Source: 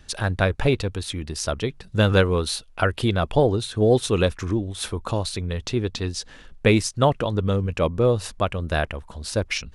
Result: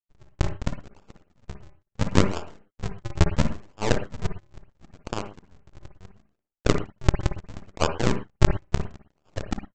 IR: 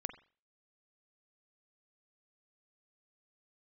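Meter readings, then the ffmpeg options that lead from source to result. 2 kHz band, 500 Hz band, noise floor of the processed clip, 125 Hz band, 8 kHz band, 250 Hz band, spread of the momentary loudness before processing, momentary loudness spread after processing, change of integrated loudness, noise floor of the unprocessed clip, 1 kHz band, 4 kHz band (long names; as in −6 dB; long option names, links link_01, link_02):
−8.0 dB, −10.0 dB, −82 dBFS, −4.5 dB, −7.5 dB, −5.0 dB, 9 LU, 20 LU, −4.5 dB, −48 dBFS, −5.5 dB, −8.5 dB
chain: -filter_complex "[0:a]agate=range=-33dB:threshold=-38dB:ratio=3:detection=peak,acrossover=split=410 4200:gain=0.112 1 0.158[link_01][link_02][link_03];[link_01][link_02][link_03]amix=inputs=3:normalize=0,aeval=exprs='0.501*(cos(1*acos(clip(val(0)/0.501,-1,1)))-cos(1*PI/2))+0.251*(cos(4*acos(clip(val(0)/0.501,-1,1)))-cos(4*PI/2))+0.0708*(cos(7*acos(clip(val(0)/0.501,-1,1)))-cos(7*PI/2))':channel_layout=same,aresample=16000,acrusher=samples=39:mix=1:aa=0.000001:lfo=1:lforange=62.4:lforate=0.73,aresample=44100[link_04];[1:a]atrim=start_sample=2205,afade=type=out:start_time=0.15:duration=0.01,atrim=end_sample=7056,asetrate=35280,aresample=44100[link_05];[link_04][link_05]afir=irnorm=-1:irlink=0,volume=-1dB"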